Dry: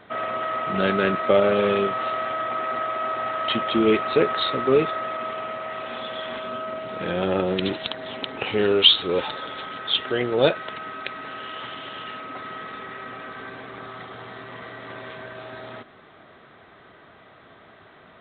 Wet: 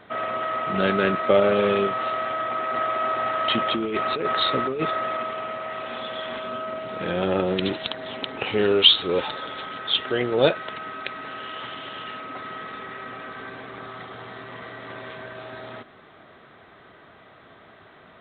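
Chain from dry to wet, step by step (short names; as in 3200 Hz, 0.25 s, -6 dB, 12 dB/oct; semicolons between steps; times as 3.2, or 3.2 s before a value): 2.74–5.23 negative-ratio compressor -23 dBFS, ratio -1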